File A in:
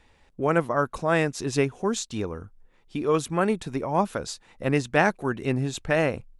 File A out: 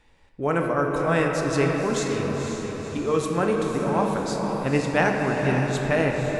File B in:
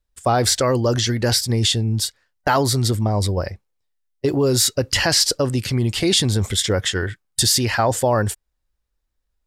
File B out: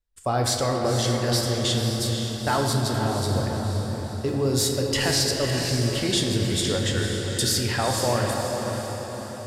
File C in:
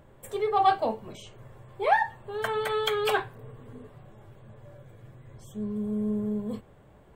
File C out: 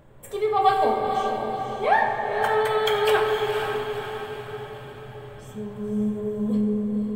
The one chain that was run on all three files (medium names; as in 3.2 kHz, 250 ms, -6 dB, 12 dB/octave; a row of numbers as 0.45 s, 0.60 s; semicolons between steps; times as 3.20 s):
on a send: echo that smears into a reverb 509 ms, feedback 51%, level -6 dB; on the sum: simulated room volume 160 m³, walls hard, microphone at 0.37 m; normalise loudness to -24 LUFS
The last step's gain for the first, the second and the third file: -1.5 dB, -7.5 dB, +1.5 dB